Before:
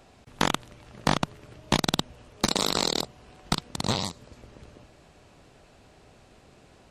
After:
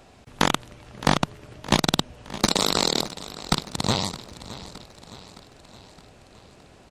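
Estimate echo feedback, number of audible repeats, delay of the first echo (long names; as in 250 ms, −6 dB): 55%, 4, 616 ms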